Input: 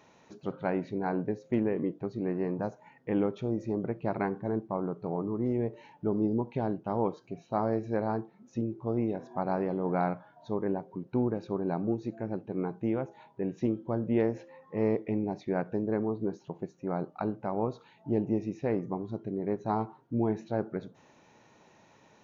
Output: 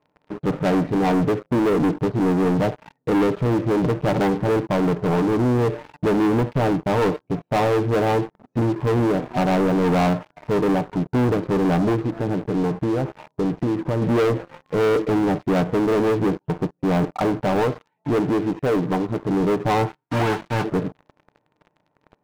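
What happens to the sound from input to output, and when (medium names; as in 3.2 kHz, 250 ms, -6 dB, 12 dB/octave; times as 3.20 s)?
11.95–14.02 s: compression 3:1, threshold -34 dBFS
17.62–19.29 s: tilt EQ +2 dB/octave
19.87–20.63 s: formants flattened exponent 0.1
whole clip: low-pass 1.1 kHz 12 dB/octave; comb 6.7 ms, depth 44%; waveshaping leveller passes 5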